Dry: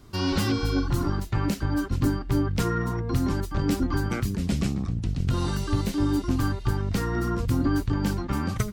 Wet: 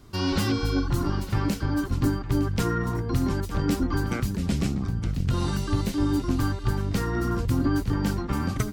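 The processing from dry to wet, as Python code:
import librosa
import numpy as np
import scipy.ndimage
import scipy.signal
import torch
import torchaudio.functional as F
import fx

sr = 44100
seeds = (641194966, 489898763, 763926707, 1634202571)

y = x + 10.0 ** (-14.0 / 20.0) * np.pad(x, (int(911 * sr / 1000.0), 0))[:len(x)]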